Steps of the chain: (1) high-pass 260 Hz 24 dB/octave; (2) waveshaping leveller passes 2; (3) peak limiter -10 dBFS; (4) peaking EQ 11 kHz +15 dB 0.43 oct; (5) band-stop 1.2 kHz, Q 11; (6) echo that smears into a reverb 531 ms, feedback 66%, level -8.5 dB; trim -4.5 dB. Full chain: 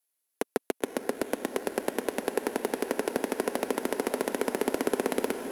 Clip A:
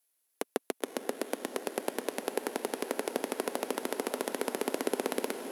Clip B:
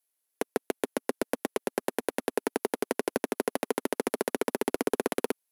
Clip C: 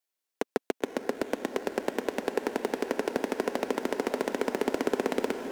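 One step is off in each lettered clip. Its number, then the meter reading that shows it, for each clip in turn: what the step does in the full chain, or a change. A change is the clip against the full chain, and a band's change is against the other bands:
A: 2, crest factor change +4.0 dB; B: 6, echo-to-direct -6.0 dB to none; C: 4, 8 kHz band -6.0 dB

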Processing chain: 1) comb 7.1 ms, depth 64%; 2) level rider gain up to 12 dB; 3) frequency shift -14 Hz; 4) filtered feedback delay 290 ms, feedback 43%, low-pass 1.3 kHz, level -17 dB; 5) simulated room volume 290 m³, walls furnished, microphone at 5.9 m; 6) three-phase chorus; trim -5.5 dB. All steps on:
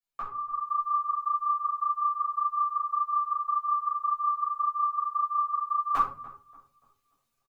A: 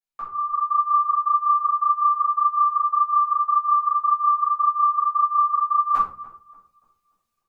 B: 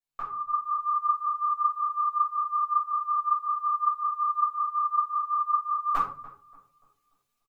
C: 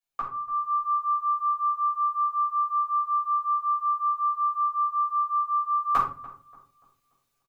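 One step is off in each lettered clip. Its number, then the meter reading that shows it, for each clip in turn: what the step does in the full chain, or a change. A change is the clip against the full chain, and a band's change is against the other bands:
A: 1, crest factor change -4.5 dB; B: 3, crest factor change -2.5 dB; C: 6, loudness change +2.5 LU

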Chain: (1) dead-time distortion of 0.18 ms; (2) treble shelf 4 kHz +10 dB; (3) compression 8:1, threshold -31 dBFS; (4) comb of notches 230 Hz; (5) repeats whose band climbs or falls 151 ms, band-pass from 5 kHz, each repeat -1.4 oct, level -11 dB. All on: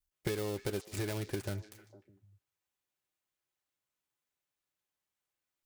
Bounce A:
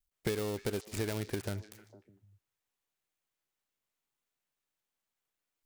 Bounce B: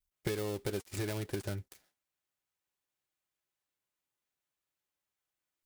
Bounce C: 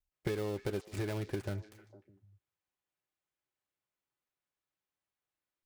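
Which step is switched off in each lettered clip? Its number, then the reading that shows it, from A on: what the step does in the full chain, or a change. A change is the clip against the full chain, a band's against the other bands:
4, crest factor change +2.0 dB; 5, echo-to-direct -15.5 dB to none; 2, 8 kHz band -7.5 dB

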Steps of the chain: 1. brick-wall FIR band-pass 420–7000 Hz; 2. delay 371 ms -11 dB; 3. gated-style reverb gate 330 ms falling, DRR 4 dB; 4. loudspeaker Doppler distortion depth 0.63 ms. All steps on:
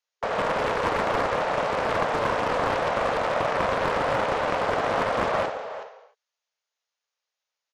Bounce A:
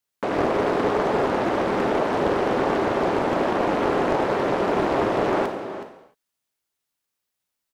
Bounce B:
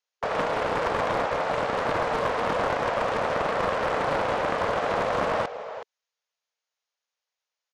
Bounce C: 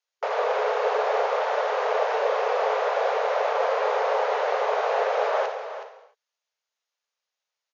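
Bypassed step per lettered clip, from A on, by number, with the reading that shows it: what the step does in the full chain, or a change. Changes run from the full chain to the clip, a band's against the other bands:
1, 250 Hz band +9.5 dB; 3, loudness change -1.0 LU; 4, 500 Hz band +4.5 dB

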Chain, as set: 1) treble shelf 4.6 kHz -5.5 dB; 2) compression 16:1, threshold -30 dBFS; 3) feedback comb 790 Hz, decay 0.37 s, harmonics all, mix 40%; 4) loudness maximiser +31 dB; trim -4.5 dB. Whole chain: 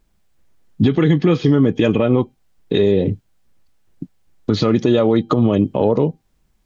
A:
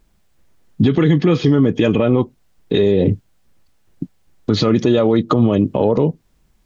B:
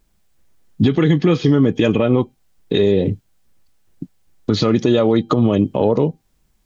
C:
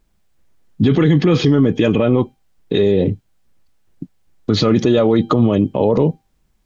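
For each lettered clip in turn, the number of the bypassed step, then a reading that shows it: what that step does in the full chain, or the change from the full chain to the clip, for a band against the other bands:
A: 3, momentary loudness spread change +5 LU; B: 1, 4 kHz band +2.0 dB; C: 2, mean gain reduction 9.0 dB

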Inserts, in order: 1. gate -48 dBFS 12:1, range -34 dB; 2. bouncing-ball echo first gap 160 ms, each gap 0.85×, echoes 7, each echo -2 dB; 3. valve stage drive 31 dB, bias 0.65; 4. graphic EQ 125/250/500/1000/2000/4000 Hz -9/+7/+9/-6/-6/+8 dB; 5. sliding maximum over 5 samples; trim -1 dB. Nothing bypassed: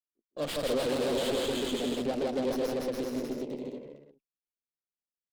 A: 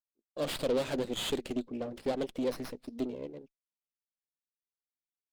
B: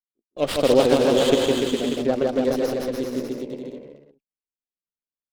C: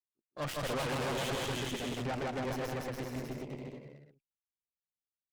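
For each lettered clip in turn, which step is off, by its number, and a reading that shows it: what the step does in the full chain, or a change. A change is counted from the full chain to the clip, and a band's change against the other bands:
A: 2, crest factor change +3.0 dB; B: 3, crest factor change +7.0 dB; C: 4, crest factor change -2.0 dB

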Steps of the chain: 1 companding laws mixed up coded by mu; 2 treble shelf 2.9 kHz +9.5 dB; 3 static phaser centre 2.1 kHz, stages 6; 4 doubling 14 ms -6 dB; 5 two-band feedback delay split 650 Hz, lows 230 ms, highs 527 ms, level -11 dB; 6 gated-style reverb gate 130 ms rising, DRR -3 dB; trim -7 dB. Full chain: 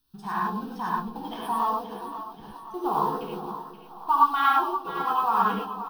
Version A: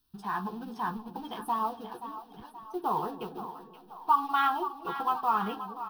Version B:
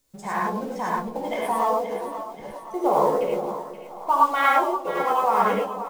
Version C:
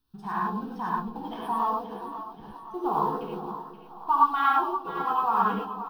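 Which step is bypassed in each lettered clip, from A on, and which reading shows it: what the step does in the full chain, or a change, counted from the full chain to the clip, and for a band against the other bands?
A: 6, momentary loudness spread change -1 LU; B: 3, 500 Hz band +10.0 dB; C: 2, 4 kHz band -5.0 dB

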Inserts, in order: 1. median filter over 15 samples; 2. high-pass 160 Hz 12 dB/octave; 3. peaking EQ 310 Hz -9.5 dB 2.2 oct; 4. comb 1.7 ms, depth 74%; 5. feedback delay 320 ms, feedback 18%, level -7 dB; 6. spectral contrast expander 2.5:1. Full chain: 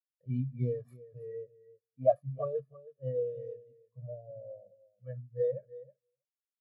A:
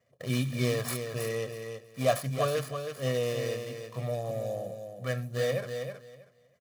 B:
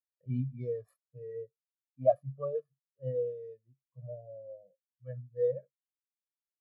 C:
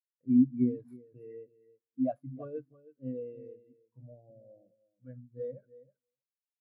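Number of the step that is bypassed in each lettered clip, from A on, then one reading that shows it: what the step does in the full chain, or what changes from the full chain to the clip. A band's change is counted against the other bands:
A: 6, crest factor change -4.5 dB; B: 5, 125 Hz band -1.5 dB; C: 4, 250 Hz band +22.0 dB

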